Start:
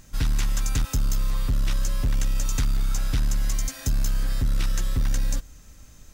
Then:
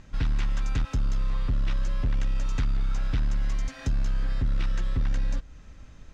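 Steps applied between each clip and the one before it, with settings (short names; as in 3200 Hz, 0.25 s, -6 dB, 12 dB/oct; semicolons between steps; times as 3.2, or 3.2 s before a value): LPF 3100 Hz 12 dB/oct; in parallel at 0 dB: compressor, threshold -32 dBFS, peak gain reduction 11.5 dB; on the sum: gain -4.5 dB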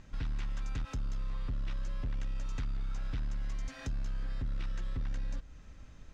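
limiter -26 dBFS, peak gain reduction 6 dB; gain -4.5 dB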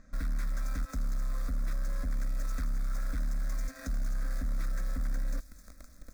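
in parallel at -3.5 dB: bit-crush 7-bit; on the sum: fixed phaser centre 590 Hz, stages 8; thin delay 0.262 s, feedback 73%, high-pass 4600 Hz, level -8 dB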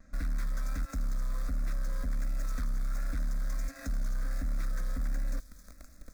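vibrato 1.4 Hz 51 cents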